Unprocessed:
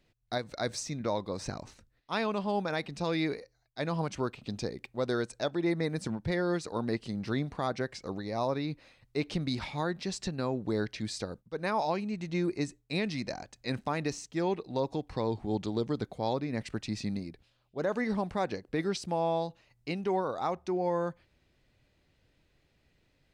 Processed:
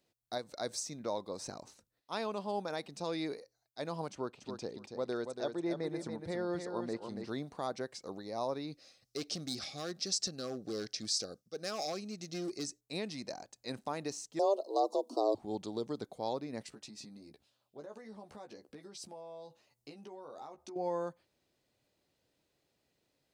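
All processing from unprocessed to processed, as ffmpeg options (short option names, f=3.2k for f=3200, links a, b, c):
-filter_complex "[0:a]asettb=1/sr,asplit=3[a][b][c];[a]atrim=end=4.124[d];[b]atrim=start=4.12:end=7.29,asetpts=PTS-STARTPTS,afade=t=in:d=0.004:c=qsin,afade=t=out:st=3.166:d=0.004:c=qsin,lowpass=f=3.2k:p=1,aecho=1:1:283|566|849:0.473|0.0804|0.0137,atrim=end_sample=139797[e];[c]atrim=start=7.286[f];[d][e]acrossfade=d=0.004:c1=hsin:c2=qsin[g];[g][f]acrossfade=d=0.004:c1=qsin:c2=hsin,asettb=1/sr,asplit=3[h][i][j];[h]atrim=end=8.724[k];[i]atrim=start=8.72:end=12.81,asetpts=PTS-STARTPTS,afade=t=in:d=0.004:c=qsin,afade=t=out:st=4.086:d=0.004:c=qsin,volume=27.5dB,asoftclip=hard,volume=-27.5dB,asuperstop=centerf=940:order=8:qfactor=3.8,equalizer=f=5.4k:w=1.7:g=12.5[l];[j]atrim=start=12.806[m];[k][l]acrossfade=d=0.004:c1=hsin:c2=qsin[n];[n][m]acrossfade=d=0.004:c1=qsin:c2=hsin,asettb=1/sr,asplit=3[o][p][q];[o]atrim=end=14.394[r];[p]atrim=start=14.39:end=15.35,asetpts=PTS-STARTPTS,afade=t=in:d=0.004:c=qsin,afade=t=out:st=0.956:d=0.004:c=qsin,acontrast=63,afreqshift=200,asuperstop=centerf=1900:order=4:qfactor=0.58[s];[q]atrim=start=15.346[t];[r][s]acrossfade=d=0.004:c1=hsin:c2=qsin[u];[u][t]acrossfade=d=0.004:c1=qsin:c2=hsin,asettb=1/sr,asplit=3[v][w][x];[v]atrim=end=16.664[y];[w]atrim=start=16.66:end=20.76,asetpts=PTS-STARTPTS,afade=t=in:d=0.004:c=qsin,afade=t=out:st=4.096:d=0.004:c=qsin,acompressor=threshold=-40dB:ratio=10:attack=3.2:release=140:knee=1:detection=peak,asplit=2[z][aa];[aa]adelay=14,volume=-4.5dB[ab];[z][ab]amix=inputs=2:normalize=0,atrim=end_sample=180810[ac];[x]atrim=start=20.756[ad];[y][ac]acrossfade=d=0.004:c1=hsin:c2=qsin[ae];[ae][ad]acrossfade=d=0.004:c1=qsin:c2=hsin,highpass=f=740:p=1,equalizer=f=2.1k:t=o:w=2.1:g=-12.5,volume=2.5dB"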